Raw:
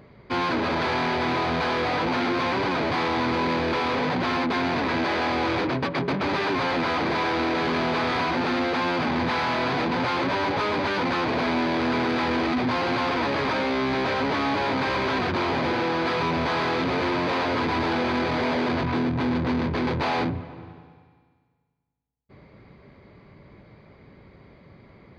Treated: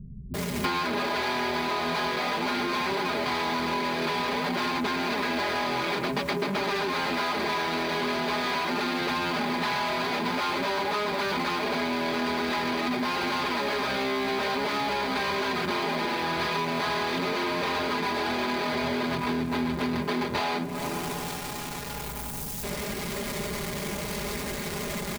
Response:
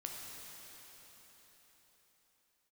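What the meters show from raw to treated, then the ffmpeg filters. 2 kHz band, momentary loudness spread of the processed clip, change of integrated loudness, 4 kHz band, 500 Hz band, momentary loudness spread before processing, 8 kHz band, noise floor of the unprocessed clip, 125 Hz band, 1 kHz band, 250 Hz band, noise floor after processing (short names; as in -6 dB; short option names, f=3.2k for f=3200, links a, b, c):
-2.0 dB, 5 LU, -3.5 dB, +0.5 dB, -3.5 dB, 1 LU, n/a, -55 dBFS, -6.0 dB, -3.0 dB, -5.0 dB, -35 dBFS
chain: -filter_complex "[0:a]aeval=exprs='val(0)+0.5*0.0106*sgn(val(0))':c=same,highshelf=f=4.2k:g=9.5,aecho=1:1:4.9:0.77,acrossover=split=160[a][b];[b]adelay=340[c];[a][c]amix=inputs=2:normalize=0,acompressor=threshold=-33dB:ratio=10,volume=8dB"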